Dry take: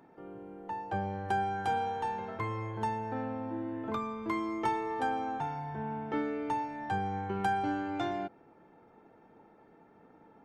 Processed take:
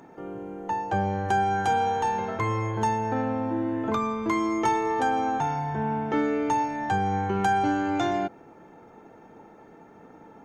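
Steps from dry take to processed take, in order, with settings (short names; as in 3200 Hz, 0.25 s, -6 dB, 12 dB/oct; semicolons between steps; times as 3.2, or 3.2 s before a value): bell 6500 Hz +12 dB 0.25 oct; in parallel at +1 dB: limiter -28 dBFS, peak gain reduction 9.5 dB; on the sum: gain +3 dB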